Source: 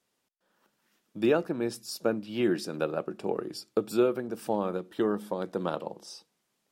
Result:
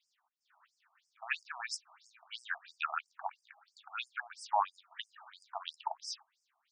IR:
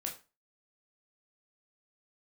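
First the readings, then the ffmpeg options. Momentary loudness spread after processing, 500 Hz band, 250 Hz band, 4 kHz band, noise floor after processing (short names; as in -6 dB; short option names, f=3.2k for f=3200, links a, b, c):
16 LU, -23.5 dB, under -40 dB, -1.5 dB, -82 dBFS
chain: -af "adynamicsmooth=sensitivity=4:basefreq=6.3k,afftfilt=real='re*between(b*sr/1024,870*pow(6900/870,0.5+0.5*sin(2*PI*3*pts/sr))/1.41,870*pow(6900/870,0.5+0.5*sin(2*PI*3*pts/sr))*1.41)':imag='im*between(b*sr/1024,870*pow(6900/870,0.5+0.5*sin(2*PI*3*pts/sr))/1.41,870*pow(6900/870,0.5+0.5*sin(2*PI*3*pts/sr))*1.41)':win_size=1024:overlap=0.75,volume=8.5dB"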